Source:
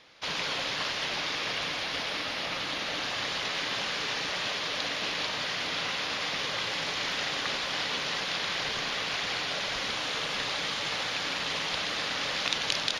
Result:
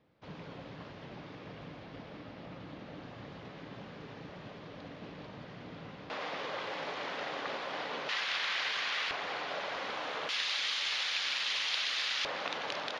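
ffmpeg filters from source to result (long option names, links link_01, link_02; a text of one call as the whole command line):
ffmpeg -i in.wav -af "asetnsamples=nb_out_samples=441:pad=0,asendcmd='6.1 bandpass f 580;8.09 bandpass f 1900;9.11 bandpass f 720;10.29 bandpass f 3300;12.25 bandpass f 680',bandpass=frequency=130:width_type=q:width=0.74:csg=0" out.wav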